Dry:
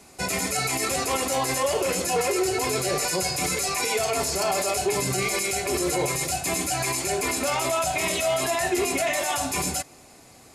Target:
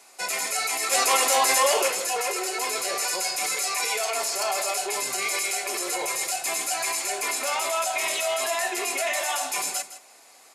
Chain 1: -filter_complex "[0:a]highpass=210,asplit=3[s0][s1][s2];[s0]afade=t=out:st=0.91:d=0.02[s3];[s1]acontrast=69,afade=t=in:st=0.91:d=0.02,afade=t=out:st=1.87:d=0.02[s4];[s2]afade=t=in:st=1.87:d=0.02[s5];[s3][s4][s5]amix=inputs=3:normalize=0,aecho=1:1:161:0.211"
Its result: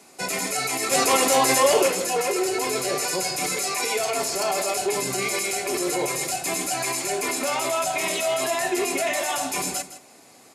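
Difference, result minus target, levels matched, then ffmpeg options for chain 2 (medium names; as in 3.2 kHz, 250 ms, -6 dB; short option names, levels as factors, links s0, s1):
250 Hz band +11.0 dB
-filter_complex "[0:a]highpass=670,asplit=3[s0][s1][s2];[s0]afade=t=out:st=0.91:d=0.02[s3];[s1]acontrast=69,afade=t=in:st=0.91:d=0.02,afade=t=out:st=1.87:d=0.02[s4];[s2]afade=t=in:st=1.87:d=0.02[s5];[s3][s4][s5]amix=inputs=3:normalize=0,aecho=1:1:161:0.211"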